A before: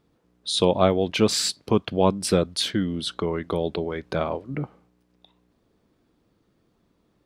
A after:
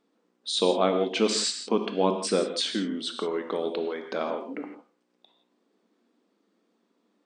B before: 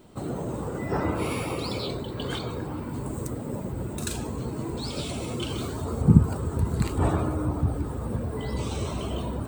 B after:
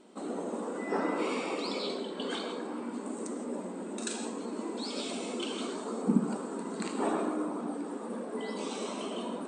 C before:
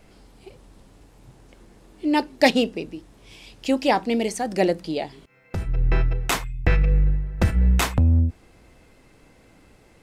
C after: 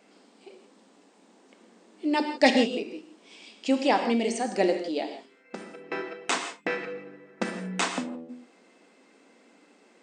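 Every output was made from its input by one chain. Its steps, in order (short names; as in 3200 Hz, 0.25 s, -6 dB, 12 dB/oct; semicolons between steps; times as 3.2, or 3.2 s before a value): brick-wall FIR band-pass 190–9200 Hz; non-linear reverb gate 0.19 s flat, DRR 5.5 dB; gain -3.5 dB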